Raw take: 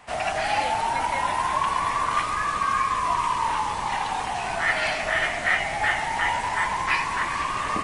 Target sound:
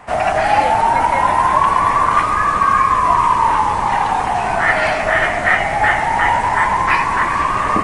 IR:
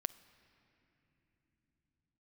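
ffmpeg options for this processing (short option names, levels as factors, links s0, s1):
-filter_complex "[0:a]asplit=2[s0][s1];[1:a]atrim=start_sample=2205,asetrate=28224,aresample=44100,lowpass=2100[s2];[s1][s2]afir=irnorm=-1:irlink=0,volume=1.33[s3];[s0][s3]amix=inputs=2:normalize=0,volume=1.5"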